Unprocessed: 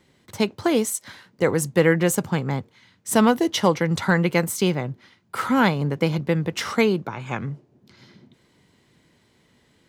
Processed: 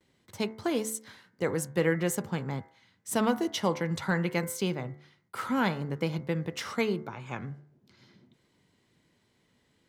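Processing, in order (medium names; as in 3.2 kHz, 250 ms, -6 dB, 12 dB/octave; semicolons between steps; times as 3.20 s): de-hum 73.31 Hz, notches 30; gate with hold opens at -54 dBFS; trim -8.5 dB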